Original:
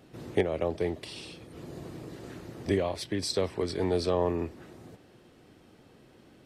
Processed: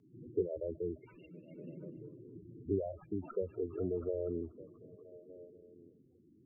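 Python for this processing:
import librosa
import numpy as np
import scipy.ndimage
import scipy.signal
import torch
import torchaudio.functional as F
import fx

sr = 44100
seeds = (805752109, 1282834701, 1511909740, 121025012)

y = np.repeat(x[::8], 8)[:len(x)]
y = fx.spec_topn(y, sr, count=8)
y = fx.echo_stepped(y, sr, ms=242, hz=3700.0, octaves=-0.7, feedback_pct=70, wet_db=-6.0)
y = fx.rotary_switch(y, sr, hz=7.0, then_hz=0.9, switch_at_s=1.87)
y = fx.low_shelf_res(y, sr, hz=120.0, db=-14.0, q=3.0, at=(1.3, 1.97))
y = y * librosa.db_to_amplitude(-5.0)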